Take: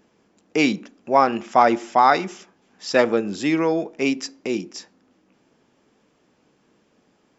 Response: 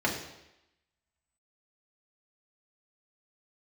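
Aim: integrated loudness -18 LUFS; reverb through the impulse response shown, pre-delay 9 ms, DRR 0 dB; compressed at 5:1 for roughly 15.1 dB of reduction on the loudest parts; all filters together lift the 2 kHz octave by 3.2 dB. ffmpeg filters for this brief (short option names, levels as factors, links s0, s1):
-filter_complex "[0:a]equalizer=f=2000:t=o:g=4,acompressor=threshold=0.0447:ratio=5,asplit=2[s0][s1];[1:a]atrim=start_sample=2205,adelay=9[s2];[s1][s2]afir=irnorm=-1:irlink=0,volume=0.282[s3];[s0][s3]amix=inputs=2:normalize=0,volume=3.16"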